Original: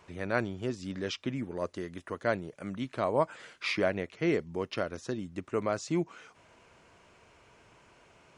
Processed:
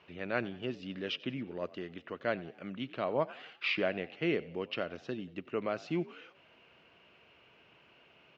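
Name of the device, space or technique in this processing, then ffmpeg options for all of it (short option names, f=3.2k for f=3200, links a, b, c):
frequency-shifting delay pedal into a guitar cabinet: -filter_complex "[0:a]asplit=5[a][b][c][d][e];[b]adelay=91,afreqshift=53,volume=-20.5dB[f];[c]adelay=182,afreqshift=106,volume=-26.7dB[g];[d]adelay=273,afreqshift=159,volume=-32.9dB[h];[e]adelay=364,afreqshift=212,volume=-39.1dB[i];[a][f][g][h][i]amix=inputs=5:normalize=0,highpass=89,equalizer=f=100:t=q:w=4:g=-7,equalizer=f=980:t=q:w=4:g=-4,equalizer=f=2.8k:t=q:w=4:g=10,lowpass=f=4.3k:w=0.5412,lowpass=f=4.3k:w=1.3066,volume=-3.5dB"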